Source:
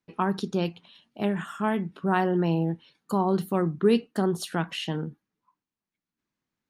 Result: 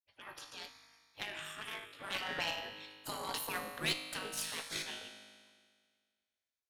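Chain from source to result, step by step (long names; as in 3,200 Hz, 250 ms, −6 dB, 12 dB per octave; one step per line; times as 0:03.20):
source passing by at 0:03.00, 6 m/s, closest 5 metres
high shelf with overshoot 1,600 Hz +9.5 dB, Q 1.5
tuned comb filter 52 Hz, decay 1.8 s, harmonics all, mix 80%
gate on every frequency bin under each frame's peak −15 dB weak
harmonic generator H 4 −18 dB, 7 −27 dB, 8 −44 dB, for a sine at −31.5 dBFS
level +11 dB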